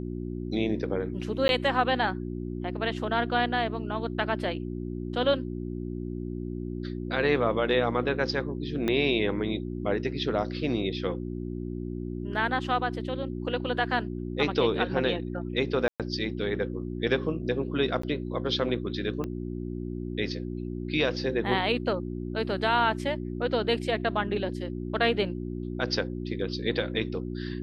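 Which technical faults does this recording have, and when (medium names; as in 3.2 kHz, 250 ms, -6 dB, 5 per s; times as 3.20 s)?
hum 60 Hz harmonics 6 -34 dBFS
1.48–1.49 s: dropout 11 ms
8.88 s: pop -15 dBFS
15.88–16.00 s: dropout 117 ms
18.02–18.03 s: dropout 14 ms
19.24 s: pop -21 dBFS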